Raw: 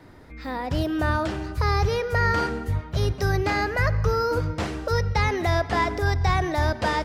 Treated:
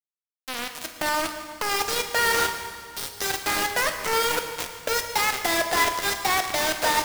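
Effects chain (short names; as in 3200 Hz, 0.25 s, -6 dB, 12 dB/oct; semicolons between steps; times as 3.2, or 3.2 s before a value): HPF 450 Hz 12 dB/oct; high shelf 5600 Hz +8.5 dB; bit-crush 4-bit; reverb RT60 2.0 s, pre-delay 7 ms, DRR 5 dB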